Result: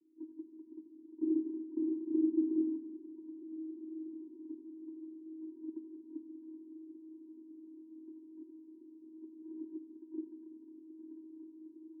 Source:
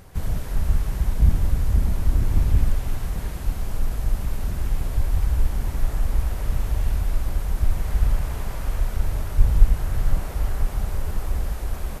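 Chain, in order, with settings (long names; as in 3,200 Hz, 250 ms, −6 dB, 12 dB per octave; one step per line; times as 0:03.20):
Chebyshev band-pass filter 210–560 Hz, order 5
noise gate −40 dBFS, range −19 dB
channel vocoder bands 16, square 318 Hz
spectral tilt −4 dB per octave
feedback delay with all-pass diffusion 1,661 ms, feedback 53%, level −15 dB
convolution reverb RT60 1.7 s, pre-delay 32 ms, DRR 8.5 dB
level +1.5 dB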